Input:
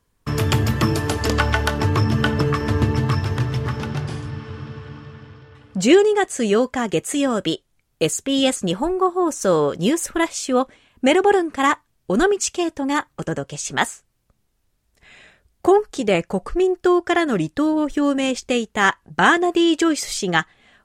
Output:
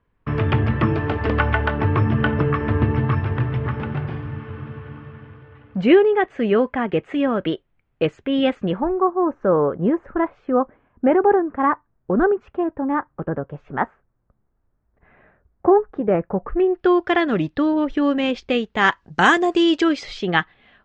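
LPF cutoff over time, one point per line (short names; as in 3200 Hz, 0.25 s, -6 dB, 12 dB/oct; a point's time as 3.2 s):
LPF 24 dB/oct
8.62 s 2600 Hz
9.11 s 1500 Hz
16.37 s 1500 Hz
16.92 s 3900 Hz
18.64 s 3900 Hz
19.33 s 7500 Hz
20.18 s 3600 Hz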